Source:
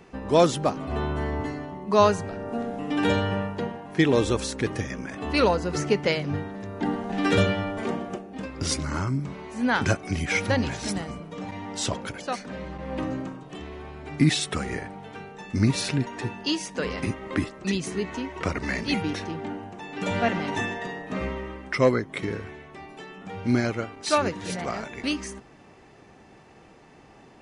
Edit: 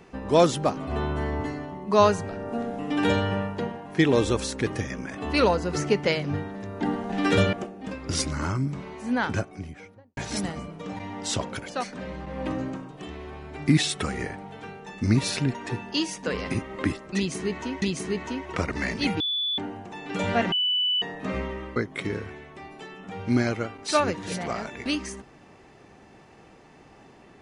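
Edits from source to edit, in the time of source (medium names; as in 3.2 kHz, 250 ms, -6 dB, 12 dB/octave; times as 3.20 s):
7.53–8.05 s: delete
9.35–10.69 s: studio fade out
17.69–18.34 s: loop, 2 plays
19.07–19.45 s: bleep 3.46 kHz -24 dBFS
20.39–20.89 s: bleep 2.98 kHz -21 dBFS
21.63–21.94 s: delete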